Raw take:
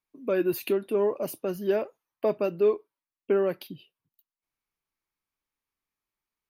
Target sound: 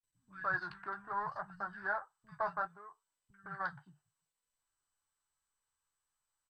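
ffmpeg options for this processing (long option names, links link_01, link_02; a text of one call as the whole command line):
ffmpeg -i in.wav -filter_complex "[0:a]flanger=delay=9.1:depth=8.2:regen=-40:speed=0.63:shape=sinusoidal,asplit=3[link_01][link_02][link_03];[link_01]afade=type=out:start_time=2.5:duration=0.02[link_04];[link_02]acompressor=threshold=-40dB:ratio=3,afade=type=in:start_time=2.5:duration=0.02,afade=type=out:start_time=3.43:duration=0.02[link_05];[link_03]afade=type=in:start_time=3.43:duration=0.02[link_06];[link_04][link_05][link_06]amix=inputs=3:normalize=0,acrossover=split=190|2200[link_07][link_08][link_09];[link_09]adelay=40[link_10];[link_08]adelay=160[link_11];[link_07][link_11][link_10]amix=inputs=3:normalize=0,adynamicsmooth=sensitivity=7:basefreq=1700,firequalizer=gain_entry='entry(150,0);entry(230,-27);entry(500,-27);entry(780,2);entry(1600,12);entry(2500,-21);entry(4500,-1);entry(7100,-22)':delay=0.05:min_phase=1,volume=3dB" -ar 32000 -c:a mp2 -b:a 192k out.mp2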